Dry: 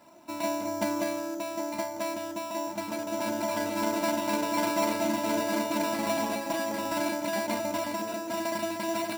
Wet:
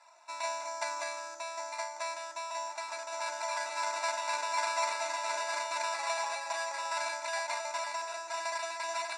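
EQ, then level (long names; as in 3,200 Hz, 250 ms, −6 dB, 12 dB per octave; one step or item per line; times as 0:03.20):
high-pass filter 810 Hz 24 dB per octave
Butterworth band-reject 3,100 Hz, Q 4.9
Butterworth low-pass 8,800 Hz 36 dB per octave
0.0 dB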